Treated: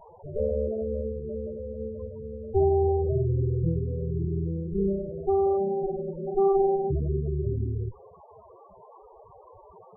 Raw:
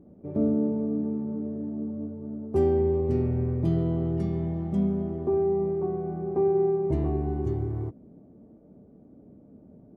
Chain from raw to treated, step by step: comb filter that takes the minimum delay 1.9 ms; band noise 370–1200 Hz -50 dBFS; loudest bins only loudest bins 8; trim +3 dB

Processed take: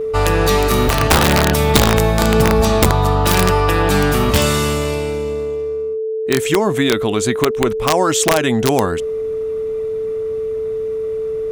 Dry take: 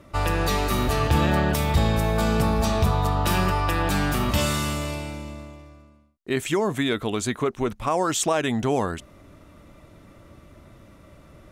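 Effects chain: integer overflow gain 12.5 dB; gate with hold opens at -43 dBFS; whistle 440 Hz -26 dBFS; trim +7.5 dB

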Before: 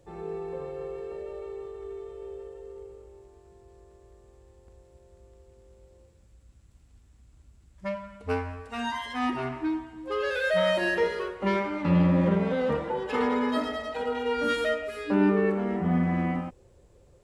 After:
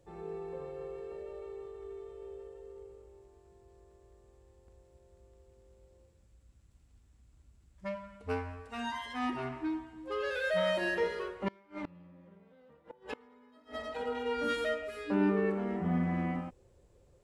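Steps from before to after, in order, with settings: 11.48–13.90 s: inverted gate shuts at -21 dBFS, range -28 dB; trim -6 dB

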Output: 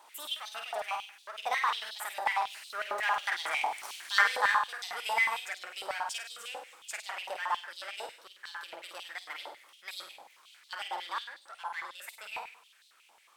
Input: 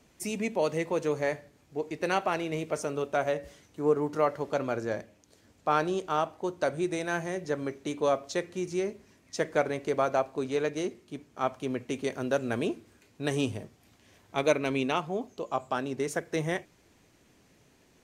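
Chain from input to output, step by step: Doppler pass-by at 5.22 s, 9 m/s, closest 3.7 m; in parallel at +1 dB: compression, threshold -49 dBFS, peak gain reduction 24 dB; on the sum: power-law waveshaper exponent 0.7; on a send: flutter echo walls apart 11.5 m, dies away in 0.81 s; on the sum: speed mistake 33 rpm record played at 45 rpm; step-sequenced high-pass 11 Hz 890–3900 Hz

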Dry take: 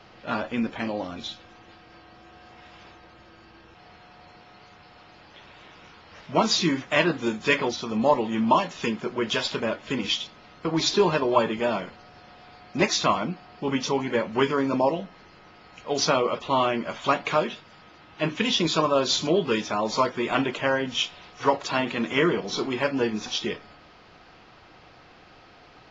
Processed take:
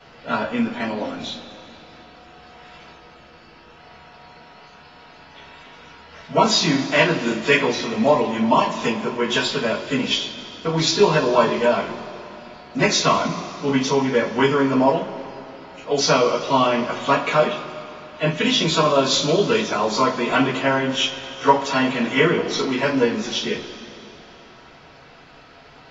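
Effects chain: two-slope reverb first 0.22 s, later 3.1 s, from -21 dB, DRR -8.5 dB; trim -3.5 dB

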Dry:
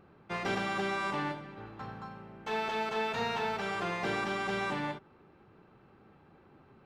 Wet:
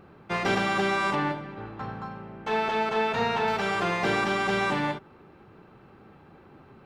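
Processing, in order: 1.15–3.48 s: treble shelf 3.8 kHz -7.5 dB; trim +7.5 dB

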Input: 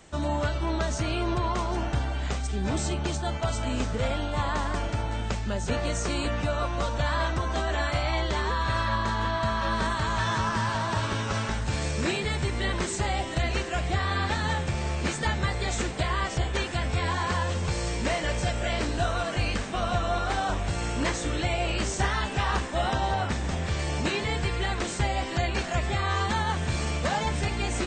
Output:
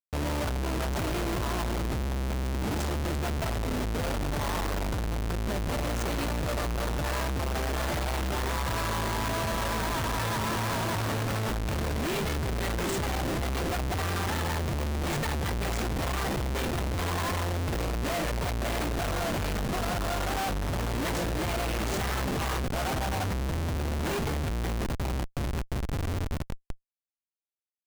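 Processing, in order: fade out at the end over 5.89 s; Schmitt trigger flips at -31.5 dBFS; trim -1 dB

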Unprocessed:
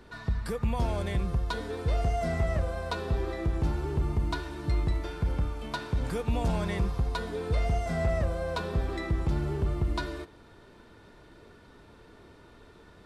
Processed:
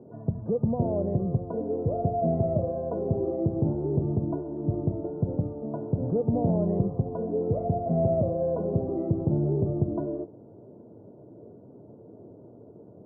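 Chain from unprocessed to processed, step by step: elliptic band-pass 110–640 Hz, stop band 60 dB; loudest bins only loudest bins 64; trim +8 dB

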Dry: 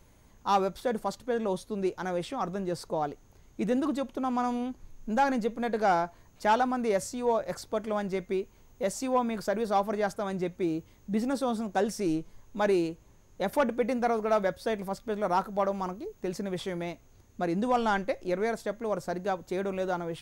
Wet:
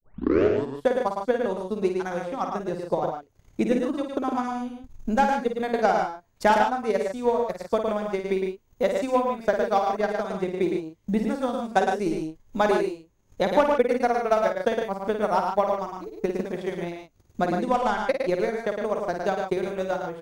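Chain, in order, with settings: tape start-up on the opening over 0.87 s; transient shaper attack +11 dB, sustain -12 dB; loudspeakers at several distances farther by 18 m -7 dB, 38 m -5 dB, 51 m -8 dB; trim -2 dB

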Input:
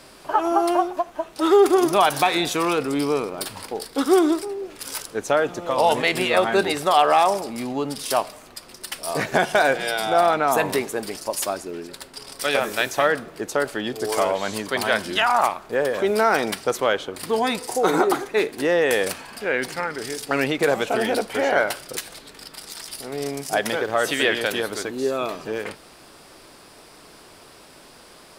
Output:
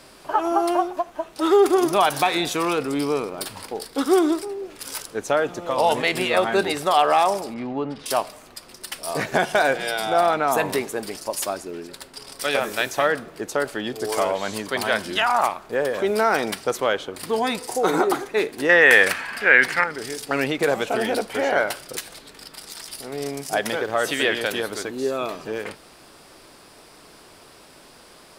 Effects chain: 7.54–8.06 s: low-pass 2.4 kHz 12 dB/octave; 18.69–19.84 s: peaking EQ 1.8 kHz +14.5 dB 1.4 oct; trim -1 dB

